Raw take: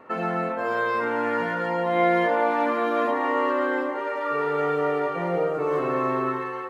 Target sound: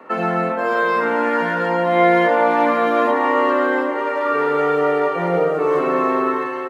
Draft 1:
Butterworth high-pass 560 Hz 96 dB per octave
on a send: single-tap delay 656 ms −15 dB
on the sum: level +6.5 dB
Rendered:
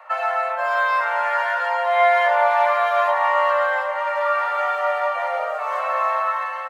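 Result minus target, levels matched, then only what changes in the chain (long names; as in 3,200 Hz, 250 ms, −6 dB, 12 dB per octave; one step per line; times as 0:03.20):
500 Hz band −3.0 dB
change: Butterworth high-pass 150 Hz 96 dB per octave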